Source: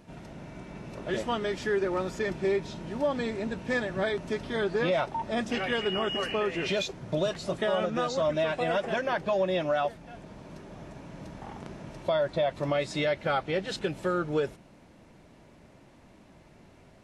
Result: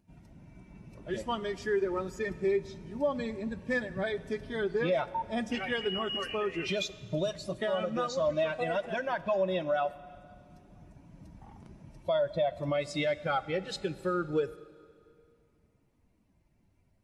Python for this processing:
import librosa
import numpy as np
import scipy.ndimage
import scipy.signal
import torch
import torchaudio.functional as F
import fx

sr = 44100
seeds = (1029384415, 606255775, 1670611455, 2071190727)

y = fx.bin_expand(x, sr, power=1.5)
y = fx.vibrato(y, sr, rate_hz=0.57, depth_cents=9.6)
y = fx.rev_schroeder(y, sr, rt60_s=2.3, comb_ms=32, drr_db=16.0)